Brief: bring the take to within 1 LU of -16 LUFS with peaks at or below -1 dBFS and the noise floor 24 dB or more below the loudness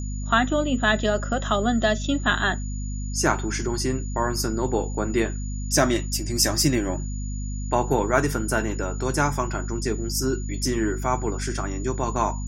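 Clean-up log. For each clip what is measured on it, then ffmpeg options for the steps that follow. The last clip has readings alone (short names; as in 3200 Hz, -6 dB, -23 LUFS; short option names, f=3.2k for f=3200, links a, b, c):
hum 50 Hz; harmonics up to 250 Hz; hum level -27 dBFS; steady tone 6900 Hz; tone level -41 dBFS; loudness -24.5 LUFS; peak -4.5 dBFS; loudness target -16.0 LUFS
-> -af "bandreject=f=50:t=h:w=4,bandreject=f=100:t=h:w=4,bandreject=f=150:t=h:w=4,bandreject=f=200:t=h:w=4,bandreject=f=250:t=h:w=4"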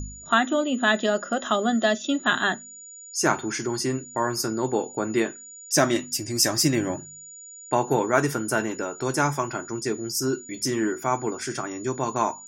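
hum none; steady tone 6900 Hz; tone level -41 dBFS
-> -af "bandreject=f=6.9k:w=30"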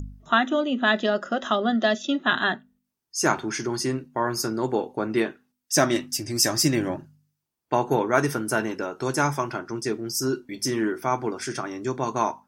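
steady tone none; loudness -25.0 LUFS; peak -5.0 dBFS; loudness target -16.0 LUFS
-> -af "volume=9dB,alimiter=limit=-1dB:level=0:latency=1"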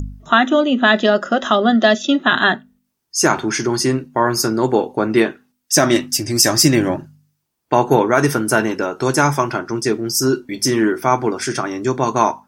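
loudness -16.5 LUFS; peak -1.0 dBFS; noise floor -72 dBFS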